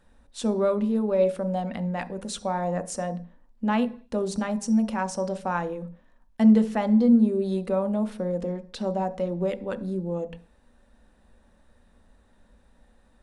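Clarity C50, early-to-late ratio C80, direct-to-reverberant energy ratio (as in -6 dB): 16.5 dB, 21.5 dB, 9.0 dB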